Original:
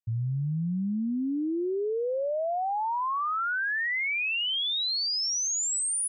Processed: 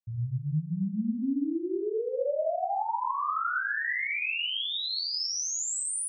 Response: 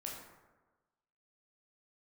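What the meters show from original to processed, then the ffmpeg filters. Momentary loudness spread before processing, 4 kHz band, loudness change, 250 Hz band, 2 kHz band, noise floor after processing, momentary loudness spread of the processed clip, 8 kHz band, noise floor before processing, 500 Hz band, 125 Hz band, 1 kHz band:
4 LU, -3.0 dB, -2.0 dB, -1.0 dB, -2.0 dB, -36 dBFS, 3 LU, -3.5 dB, -29 dBFS, -1.0 dB, -1.5 dB, -1.0 dB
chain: -filter_complex "[1:a]atrim=start_sample=2205,afade=t=out:st=0.33:d=0.01,atrim=end_sample=14994[s0];[0:a][s0]afir=irnorm=-1:irlink=0"

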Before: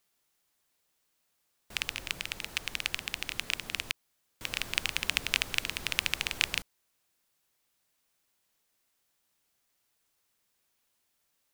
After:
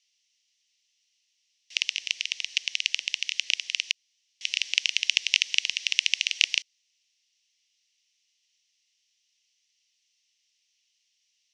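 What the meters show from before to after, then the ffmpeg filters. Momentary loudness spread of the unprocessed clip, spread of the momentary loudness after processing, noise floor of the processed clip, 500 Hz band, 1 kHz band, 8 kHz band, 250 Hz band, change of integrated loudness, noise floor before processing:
7 LU, 7 LU, -74 dBFS, under -20 dB, under -20 dB, +6.5 dB, under -25 dB, +6.5 dB, -77 dBFS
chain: -af "aexciter=amount=12:drive=5.5:freq=2000,highpass=480,equalizer=f=500:t=q:w=4:g=-5,equalizer=f=840:t=q:w=4:g=-7,equalizer=f=1400:t=q:w=4:g=-8,equalizer=f=2000:t=q:w=4:g=5,equalizer=f=2900:t=q:w=4:g=7,equalizer=f=5800:t=q:w=4:g=9,lowpass=f=5800:w=0.5412,lowpass=f=5800:w=1.3066,volume=0.126"

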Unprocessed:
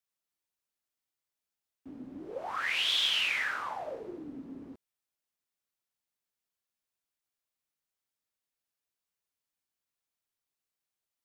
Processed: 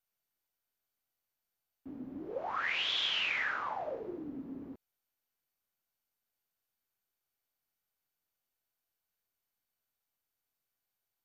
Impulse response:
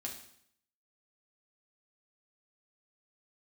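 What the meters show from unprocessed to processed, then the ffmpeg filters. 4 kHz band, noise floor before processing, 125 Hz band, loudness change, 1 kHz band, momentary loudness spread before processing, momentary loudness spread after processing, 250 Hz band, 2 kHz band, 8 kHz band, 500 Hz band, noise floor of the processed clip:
-4.5 dB, under -85 dBFS, +1.0 dB, -4.5 dB, 0.0 dB, 21 LU, 17 LU, +1.0 dB, -2.0 dB, -11.0 dB, +0.5 dB, under -85 dBFS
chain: -af "aresample=16000,aresample=44100,aemphasis=mode=reproduction:type=75fm" -ar 48000 -c:a mp2 -b:a 192k

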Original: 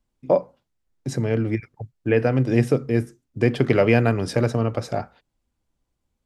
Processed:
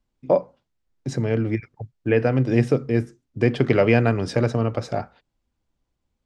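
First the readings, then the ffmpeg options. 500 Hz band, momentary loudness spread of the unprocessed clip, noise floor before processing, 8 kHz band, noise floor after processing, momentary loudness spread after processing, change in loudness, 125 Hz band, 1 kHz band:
0.0 dB, 12 LU, -78 dBFS, no reading, -78 dBFS, 13 LU, 0.0 dB, 0.0 dB, 0.0 dB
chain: -af "lowpass=7000"

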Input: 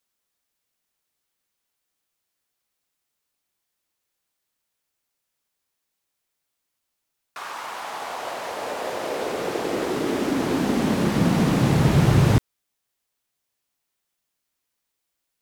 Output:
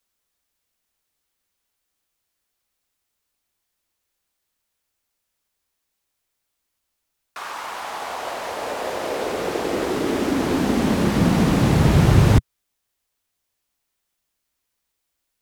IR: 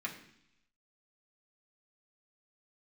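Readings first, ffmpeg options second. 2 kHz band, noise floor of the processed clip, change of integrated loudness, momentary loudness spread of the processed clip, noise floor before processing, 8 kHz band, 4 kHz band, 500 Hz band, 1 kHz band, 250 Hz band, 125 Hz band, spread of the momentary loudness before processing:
+2.0 dB, -78 dBFS, +2.0 dB, 15 LU, -80 dBFS, +2.0 dB, +2.0 dB, +2.0 dB, +2.0 dB, +2.0 dB, +2.5 dB, 14 LU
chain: -filter_complex "[0:a]equalizer=f=130:w=2.9:g=-5,acrossover=split=110[s0][s1];[s0]acontrast=86[s2];[s2][s1]amix=inputs=2:normalize=0,volume=1.26"

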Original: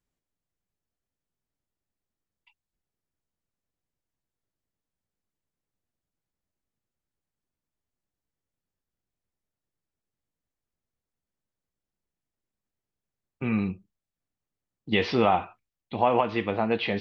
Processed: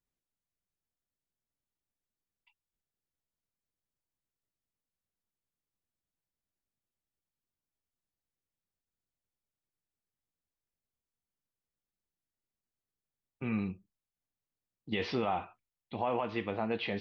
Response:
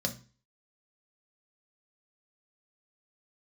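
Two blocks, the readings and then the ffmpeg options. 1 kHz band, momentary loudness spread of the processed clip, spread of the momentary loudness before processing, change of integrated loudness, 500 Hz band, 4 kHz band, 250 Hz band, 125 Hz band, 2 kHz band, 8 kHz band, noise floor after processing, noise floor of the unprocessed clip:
-10.0 dB, 11 LU, 13 LU, -9.0 dB, -9.0 dB, -8.5 dB, -8.0 dB, -7.5 dB, -8.5 dB, no reading, under -85 dBFS, under -85 dBFS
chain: -af "alimiter=limit=0.188:level=0:latency=1:release=28,volume=0.447"

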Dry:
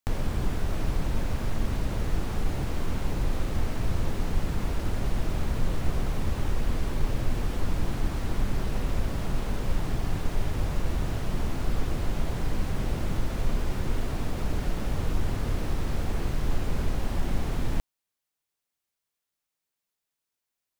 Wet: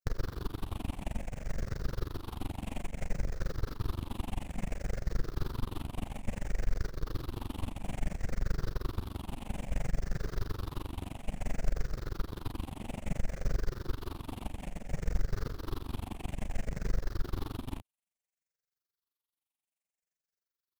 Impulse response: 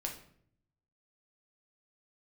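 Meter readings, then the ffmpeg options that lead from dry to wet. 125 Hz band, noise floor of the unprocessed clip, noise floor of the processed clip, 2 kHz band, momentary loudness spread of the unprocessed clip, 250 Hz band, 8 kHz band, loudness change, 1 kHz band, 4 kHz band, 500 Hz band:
-8.0 dB, under -85 dBFS, under -85 dBFS, -8.0 dB, 1 LU, -8.0 dB, -8.0 dB, -8.0 dB, -8.0 dB, -8.0 dB, -8.0 dB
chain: -af "afftfilt=real='re*pow(10,11/40*sin(2*PI*(0.56*log(max(b,1)*sr/1024/100)/log(2)-(-0.59)*(pts-256)/sr)))':imag='im*pow(10,11/40*sin(2*PI*(0.56*log(max(b,1)*sr/1024/100)/log(2)-(-0.59)*(pts-256)/sr)))':win_size=1024:overlap=0.75,aeval=exprs='0.398*(cos(1*acos(clip(val(0)/0.398,-1,1)))-cos(1*PI/2))+0.0282*(cos(2*acos(clip(val(0)/0.398,-1,1)))-cos(2*PI/2))+0.00631*(cos(3*acos(clip(val(0)/0.398,-1,1)))-cos(3*PI/2))+0.01*(cos(6*acos(clip(val(0)/0.398,-1,1)))-cos(6*PI/2))+0.0447*(cos(8*acos(clip(val(0)/0.398,-1,1)))-cos(8*PI/2))':c=same,tremolo=f=23:d=0.974,volume=0.501"

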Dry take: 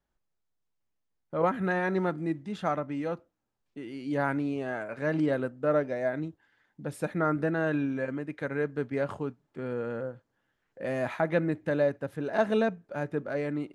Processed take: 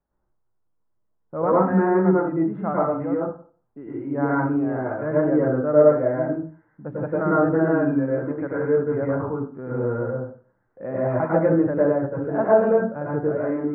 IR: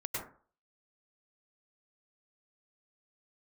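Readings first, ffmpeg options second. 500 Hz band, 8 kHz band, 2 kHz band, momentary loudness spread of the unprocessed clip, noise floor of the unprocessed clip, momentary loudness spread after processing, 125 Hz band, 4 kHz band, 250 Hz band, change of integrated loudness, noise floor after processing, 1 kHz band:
+9.5 dB, no reading, +1.0 dB, 10 LU, -80 dBFS, 12 LU, +8.0 dB, under -20 dB, +9.0 dB, +9.0 dB, -70 dBFS, +7.5 dB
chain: -filter_complex "[0:a]lowpass=f=1400:w=0.5412,lowpass=f=1400:w=1.3066[s0];[1:a]atrim=start_sample=2205[s1];[s0][s1]afir=irnorm=-1:irlink=0,volume=1.78"

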